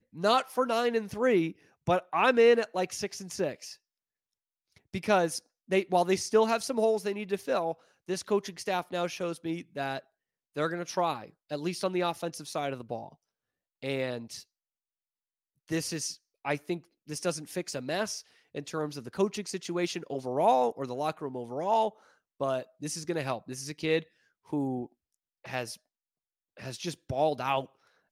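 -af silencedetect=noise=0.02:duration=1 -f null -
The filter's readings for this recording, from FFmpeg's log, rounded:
silence_start: 3.71
silence_end: 4.94 | silence_duration: 1.23
silence_start: 14.37
silence_end: 15.71 | silence_duration: 1.35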